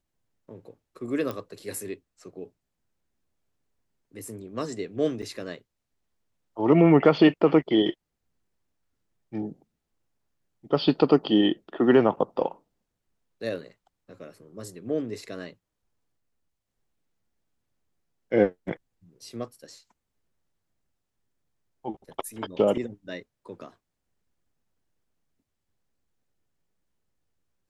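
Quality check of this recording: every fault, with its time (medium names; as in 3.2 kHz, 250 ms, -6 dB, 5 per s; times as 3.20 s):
1.31 s: pop -19 dBFS
5.22–5.23 s: dropout 5.3 ms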